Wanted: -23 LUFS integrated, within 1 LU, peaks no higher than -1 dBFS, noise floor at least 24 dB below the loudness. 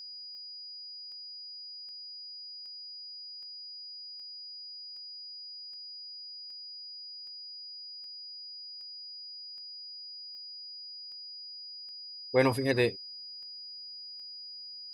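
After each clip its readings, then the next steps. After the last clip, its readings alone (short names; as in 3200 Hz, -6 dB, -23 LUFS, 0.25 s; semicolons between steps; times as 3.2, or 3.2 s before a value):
clicks 19; steady tone 4900 Hz; tone level -42 dBFS; loudness -38.0 LUFS; peak -12.5 dBFS; loudness target -23.0 LUFS
-> de-click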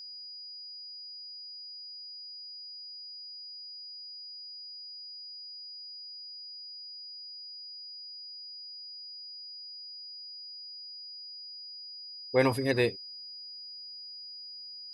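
clicks 0; steady tone 4900 Hz; tone level -42 dBFS
-> notch 4900 Hz, Q 30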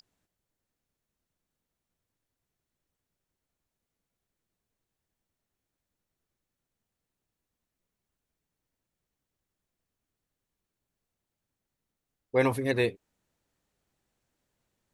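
steady tone none; loudness -28.0 LUFS; peak -12.5 dBFS; loudness target -23.0 LUFS
-> gain +5 dB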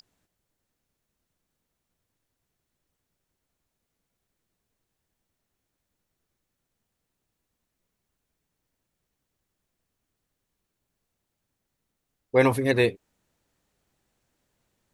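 loudness -23.0 LUFS; peak -7.5 dBFS; noise floor -82 dBFS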